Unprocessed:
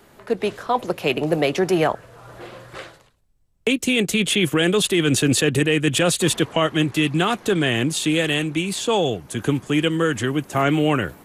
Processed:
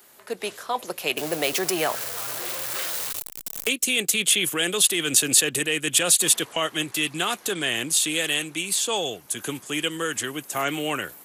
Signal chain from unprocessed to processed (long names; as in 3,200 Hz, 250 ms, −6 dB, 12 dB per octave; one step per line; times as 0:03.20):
0:01.17–0:03.69: converter with a step at zero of −26 dBFS
RIAA equalisation recording
level −5.5 dB